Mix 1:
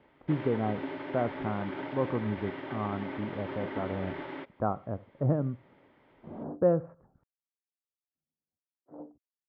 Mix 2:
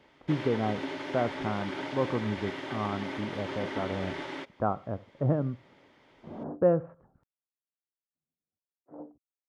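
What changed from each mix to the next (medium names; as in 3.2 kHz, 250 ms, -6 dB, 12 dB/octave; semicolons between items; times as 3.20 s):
master: remove distance through air 420 m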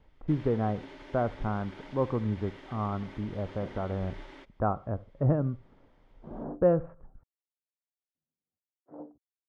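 speech: remove high-pass 120 Hz 12 dB/octave; first sound -11.5 dB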